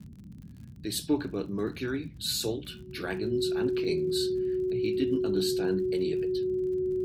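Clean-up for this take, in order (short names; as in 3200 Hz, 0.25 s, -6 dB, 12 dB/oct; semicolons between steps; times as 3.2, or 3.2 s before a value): de-click; notch 370 Hz, Q 30; noise print and reduce 30 dB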